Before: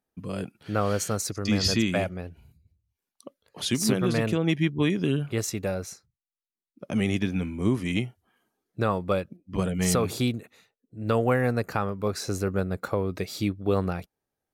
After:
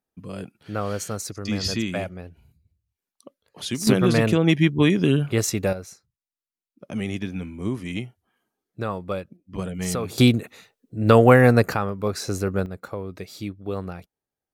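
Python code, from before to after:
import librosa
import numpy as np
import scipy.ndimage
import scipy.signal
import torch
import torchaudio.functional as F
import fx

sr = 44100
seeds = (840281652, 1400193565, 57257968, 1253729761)

y = fx.gain(x, sr, db=fx.steps((0.0, -2.0), (3.87, 6.0), (5.73, -3.0), (10.18, 10.0), (11.74, 2.5), (12.66, -5.0)))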